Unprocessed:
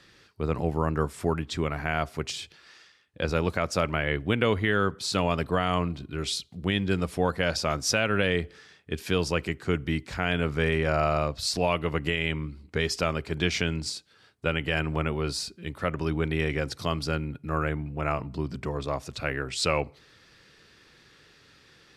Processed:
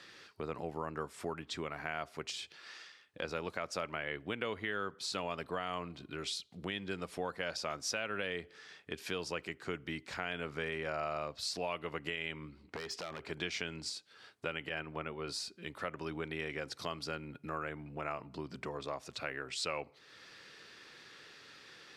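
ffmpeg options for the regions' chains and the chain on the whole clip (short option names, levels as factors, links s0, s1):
-filter_complex "[0:a]asettb=1/sr,asplit=3[s0][s1][s2];[s0]atrim=end=12.494[s3];[s1]atrim=start=12.49:end=13.29,asetpts=PTS-STARTPTS,afade=t=in:d=0.004:c=qsin,afade=t=out:st=0.796:d=0.004:c=qsin,highshelf=f=4400:g=-8,acompressor=threshold=0.0355:ratio=4:attack=3.2:release=140:knee=1:detection=peak,aeval=exprs='0.0422*(abs(mod(val(0)/0.0422+3,4)-2)-1)':c=same[s4];[s2]atrim=start=13.286[s5];[s3][s4]acrossfade=d=0.004:c1=hsin:c2=qsin[s6];[s6][s5]acrossfade=d=0.004:c1=qsin:c2=hsin,asettb=1/sr,asplit=3[s7][s8][s9];[s7]atrim=end=14.694[s10];[s8]atrim=start=14.69:end=15.28,asetpts=PTS-STARTPTS,afade=t=in:d=0.004:c=qsin,afade=t=out:st=0.586:d=0.004:c=qsin,agate=range=0.0224:threshold=0.0447:ratio=3:release=100:detection=peak,equalizer=f=7500:w=0.88:g=-9.5[s11];[s9]atrim=start=15.276[s12];[s10][s11]acrossfade=d=0.004:c1=hsin:c2=qsin[s13];[s13][s12]acrossfade=d=0.004:c1=qsin:c2=hsin,highpass=f=430:p=1,highshelf=f=10000:g=-7.5,acompressor=threshold=0.00398:ratio=2,volume=1.41"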